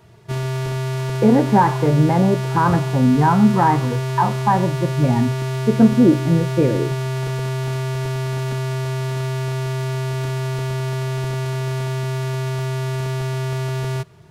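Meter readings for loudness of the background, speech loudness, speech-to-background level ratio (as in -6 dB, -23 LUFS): -24.0 LUFS, -17.5 LUFS, 6.5 dB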